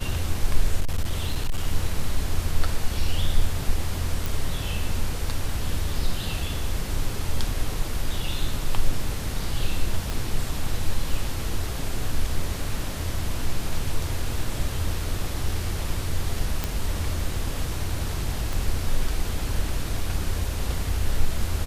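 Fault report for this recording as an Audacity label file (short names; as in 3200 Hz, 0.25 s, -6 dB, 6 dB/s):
0.800000	1.640000	clipped -18.5 dBFS
4.260000	4.260000	pop
10.100000	10.100000	pop
16.640000	16.640000	pop -10 dBFS
18.530000	18.530000	pop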